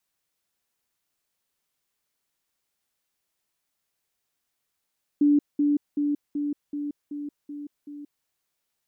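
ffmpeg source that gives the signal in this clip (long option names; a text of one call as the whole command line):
ffmpeg -f lavfi -i "aevalsrc='pow(10,(-15.5-3*floor(t/0.38))/20)*sin(2*PI*291*t)*clip(min(mod(t,0.38),0.18-mod(t,0.38))/0.005,0,1)':duration=3.04:sample_rate=44100" out.wav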